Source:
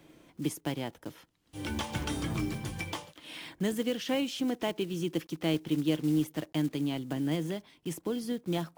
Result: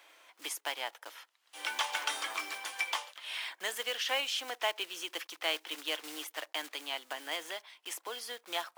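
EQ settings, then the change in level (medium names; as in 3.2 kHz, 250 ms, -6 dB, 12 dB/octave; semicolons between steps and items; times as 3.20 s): Bessel high-pass 1.1 kHz, order 4; treble shelf 3.8 kHz -6.5 dB; +8.5 dB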